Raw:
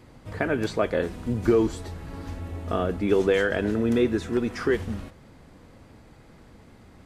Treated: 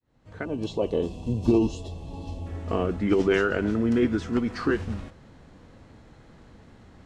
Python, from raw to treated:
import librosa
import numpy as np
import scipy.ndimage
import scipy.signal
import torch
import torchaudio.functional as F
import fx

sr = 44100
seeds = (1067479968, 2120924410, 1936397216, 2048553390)

y = fx.fade_in_head(x, sr, length_s=0.91)
y = fx.spec_box(y, sr, start_s=0.45, length_s=2.02, low_hz=1200.0, high_hz=2600.0, gain_db=-20)
y = fx.formant_shift(y, sr, semitones=-2)
y = scipy.signal.sosfilt(scipy.signal.butter(2, 7600.0, 'lowpass', fs=sr, output='sos'), y)